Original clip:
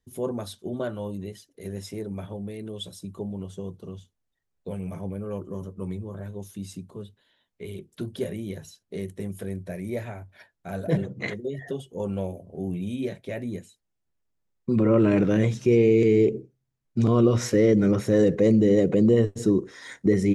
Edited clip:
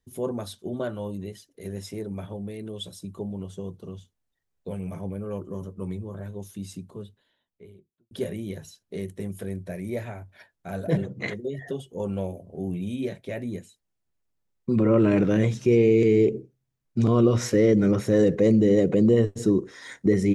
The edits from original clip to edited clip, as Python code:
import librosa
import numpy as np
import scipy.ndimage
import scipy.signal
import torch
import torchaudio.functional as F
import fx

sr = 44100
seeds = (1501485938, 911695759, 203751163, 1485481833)

y = fx.studio_fade_out(x, sr, start_s=6.91, length_s=1.2)